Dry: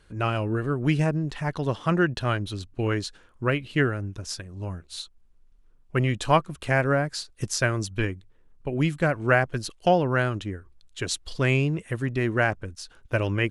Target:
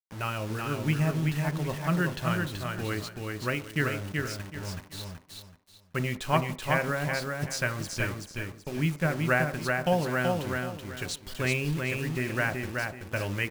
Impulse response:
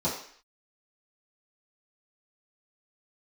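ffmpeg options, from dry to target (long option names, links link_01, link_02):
-filter_complex "[0:a]equalizer=frequency=2200:width_type=o:width=1.2:gain=5.5,acrusher=bits=5:mix=0:aa=0.000001,aecho=1:1:379|758|1137|1516:0.668|0.187|0.0524|0.0147,asplit=2[link_01][link_02];[1:a]atrim=start_sample=2205,lowpass=2500[link_03];[link_02][link_03]afir=irnorm=-1:irlink=0,volume=-19.5dB[link_04];[link_01][link_04]amix=inputs=2:normalize=0,volume=-7.5dB"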